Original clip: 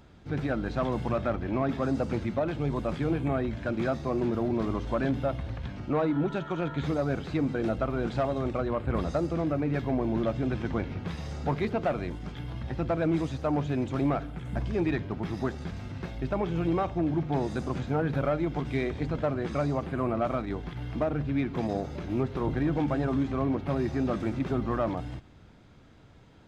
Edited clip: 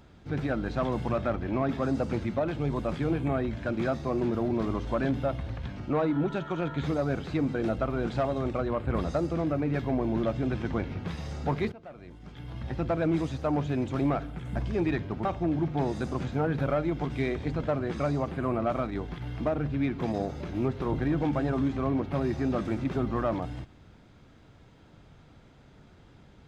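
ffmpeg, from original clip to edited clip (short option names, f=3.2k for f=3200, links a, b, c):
-filter_complex "[0:a]asplit=3[a][b][c];[a]atrim=end=11.72,asetpts=PTS-STARTPTS,afade=t=out:st=11.716:d=0.004:c=hsin:silence=0.105925[d];[b]atrim=start=11.72:end=15.252,asetpts=PTS-STARTPTS,afade=t=in:d=0.95:c=qua:silence=0.105925[e];[c]atrim=start=16.798[f];[d][e]concat=n=2:v=0:a=1[g];[g][f]acrossfade=d=0.004:c1=hsin:c2=hsin"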